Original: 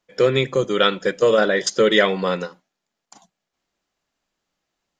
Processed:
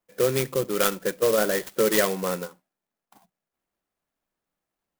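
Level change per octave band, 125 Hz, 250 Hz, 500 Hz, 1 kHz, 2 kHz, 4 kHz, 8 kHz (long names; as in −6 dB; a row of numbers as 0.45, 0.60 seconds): −5.5, −5.5, −5.5, −6.5, −8.0, −9.5, +2.0 decibels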